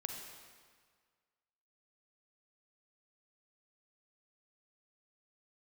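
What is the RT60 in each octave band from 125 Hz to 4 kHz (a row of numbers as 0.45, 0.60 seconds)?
1.7, 1.7, 1.7, 1.8, 1.6, 1.5 seconds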